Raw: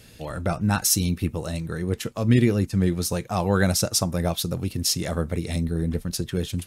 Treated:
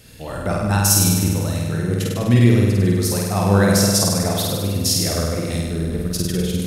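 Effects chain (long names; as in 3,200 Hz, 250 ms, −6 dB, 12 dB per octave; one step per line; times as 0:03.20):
high-shelf EQ 10,000 Hz +4 dB
on a send: flutter between parallel walls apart 8.6 metres, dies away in 1.4 s
on the sum: spring reverb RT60 3.9 s, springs 40 ms, chirp 75 ms, DRR 15 dB
level +1 dB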